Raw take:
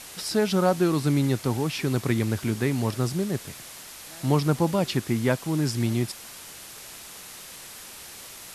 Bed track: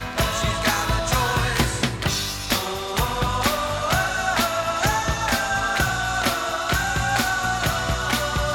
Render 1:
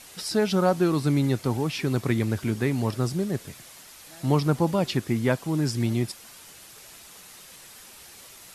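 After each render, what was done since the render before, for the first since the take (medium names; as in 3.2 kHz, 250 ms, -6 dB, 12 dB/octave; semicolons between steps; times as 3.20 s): noise reduction 6 dB, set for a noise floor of -43 dBFS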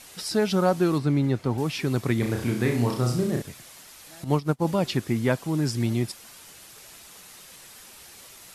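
0.98–1.58 s: low-pass 2.4 kHz 6 dB/octave; 2.19–3.42 s: flutter echo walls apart 5.7 m, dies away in 0.5 s; 4.24–4.65 s: upward expansion 2.5:1, over -37 dBFS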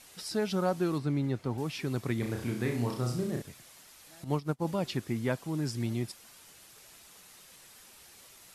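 trim -7.5 dB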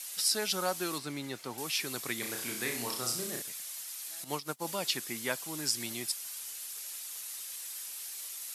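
high-pass 130 Hz 12 dB/octave; tilt EQ +4.5 dB/octave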